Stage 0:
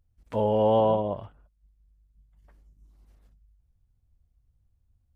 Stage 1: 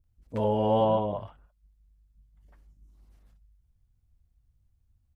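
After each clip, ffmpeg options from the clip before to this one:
-filter_complex "[0:a]acrossover=split=510[a][b];[b]adelay=40[c];[a][c]amix=inputs=2:normalize=0"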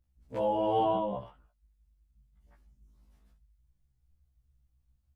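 -af "afftfilt=real='re*1.73*eq(mod(b,3),0)':imag='im*1.73*eq(mod(b,3),0)':win_size=2048:overlap=0.75"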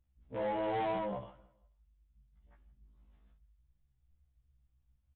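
-af "aresample=8000,asoftclip=type=tanh:threshold=-28dB,aresample=44100,aecho=1:1:162|324|486:0.0794|0.0294|0.0109,volume=-2dB"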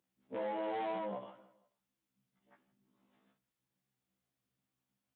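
-af "highpass=f=190:w=0.5412,highpass=f=190:w=1.3066,acompressor=threshold=-44dB:ratio=2,volume=3.5dB"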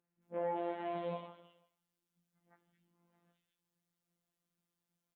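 -filter_complex "[0:a]acrossover=split=2400[a][b];[b]adelay=220[c];[a][c]amix=inputs=2:normalize=0,afftfilt=real='hypot(re,im)*cos(PI*b)':imag='0':win_size=1024:overlap=0.75,volume=3dB"

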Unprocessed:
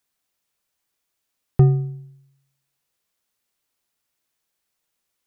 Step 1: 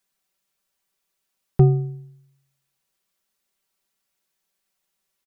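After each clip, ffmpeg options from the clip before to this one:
-af "aecho=1:1:5.2:0.69,volume=-1.5dB"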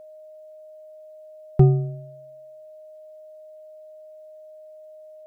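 -af "aeval=exprs='val(0)+0.00794*sin(2*PI*620*n/s)':c=same"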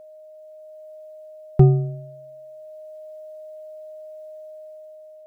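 -af "dynaudnorm=f=310:g=5:m=5.5dB"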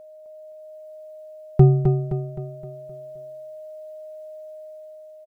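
-af "aecho=1:1:260|520|780|1040|1300|1560:0.531|0.244|0.112|0.0517|0.0238|0.0109"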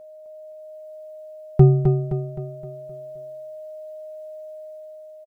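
-filter_complex "[0:a]asplit=2[a][b];[b]adelay=13,volume=-13.5dB[c];[a][c]amix=inputs=2:normalize=0"

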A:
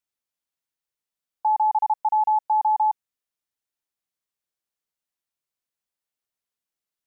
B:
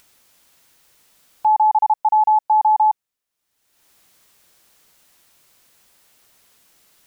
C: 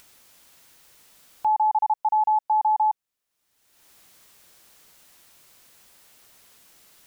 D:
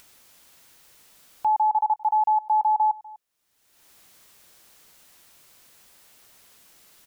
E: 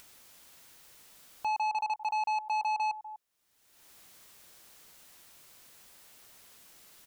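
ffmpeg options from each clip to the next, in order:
-af "acompressor=mode=upward:threshold=-41dB:ratio=2.5,volume=5.5dB"
-af "alimiter=limit=-18.5dB:level=0:latency=1:release=424,volume=2dB"
-af "aecho=1:1:247:0.0841"
-af "asoftclip=type=tanh:threshold=-26.5dB,volume=-1.5dB"

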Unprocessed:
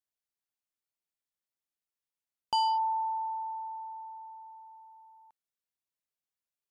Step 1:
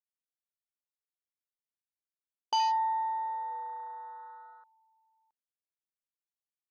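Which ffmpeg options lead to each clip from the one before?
-af "afwtdn=0.0112"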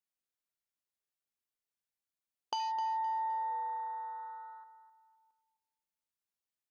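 -af "acompressor=threshold=-34dB:ratio=6,aecho=1:1:258|516|774:0.251|0.0703|0.0197"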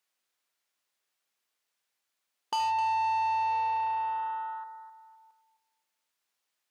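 -filter_complex "[0:a]asplit=2[a][b];[b]highpass=f=720:p=1,volume=20dB,asoftclip=type=tanh:threshold=-22dB[c];[a][c]amix=inputs=2:normalize=0,lowpass=f=5.4k:p=1,volume=-6dB"

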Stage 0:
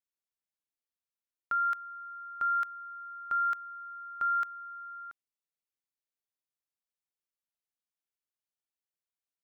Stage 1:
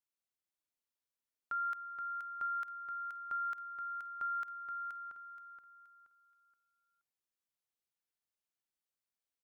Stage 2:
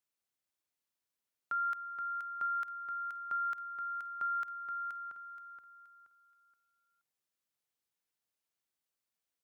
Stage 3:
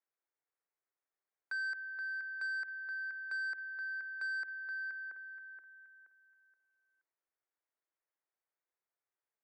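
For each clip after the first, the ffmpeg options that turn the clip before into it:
-af "alimiter=level_in=6.5dB:limit=-24dB:level=0:latency=1,volume=-6.5dB,aecho=1:1:475|950|1425|1900:0.473|0.147|0.0455|0.0141,volume=-2dB"
-af "highpass=f=57:w=0.5412,highpass=f=57:w=1.3066,volume=2.5dB"
-af "highpass=f=150:t=q:w=0.5412,highpass=f=150:t=q:w=1.307,lowpass=f=2k:t=q:w=0.5176,lowpass=f=2k:t=q:w=0.7071,lowpass=f=2k:t=q:w=1.932,afreqshift=160,asoftclip=type=tanh:threshold=-33.5dB"

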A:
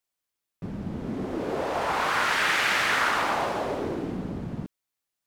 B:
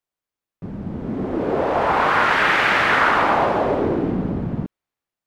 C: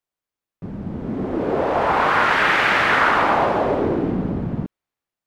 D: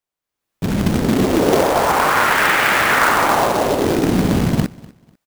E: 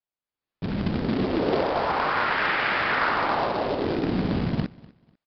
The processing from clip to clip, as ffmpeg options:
-filter_complex "[0:a]highshelf=f=2.4k:g=-10,acrossover=split=4200[a][b];[a]dynaudnorm=f=510:g=5:m=8.5dB[c];[c][b]amix=inputs=2:normalize=0,volume=2dB"
-af anull
-af "acrusher=bits=2:mode=log:mix=0:aa=0.000001,aecho=1:1:247|494:0.075|0.0172,dynaudnorm=f=190:g=5:m=14dB,volume=-1dB"
-af "aresample=11025,aresample=44100,volume=-9dB"

